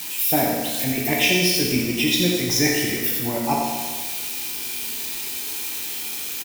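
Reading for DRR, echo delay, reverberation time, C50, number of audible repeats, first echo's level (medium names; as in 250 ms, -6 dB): -2.5 dB, 87 ms, 1.5 s, 0.5 dB, 1, -6.0 dB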